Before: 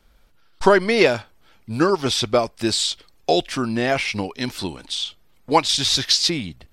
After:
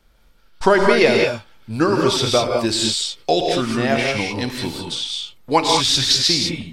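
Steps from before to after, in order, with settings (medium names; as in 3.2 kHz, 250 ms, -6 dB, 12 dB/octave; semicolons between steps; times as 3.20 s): gated-style reverb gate 230 ms rising, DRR 1 dB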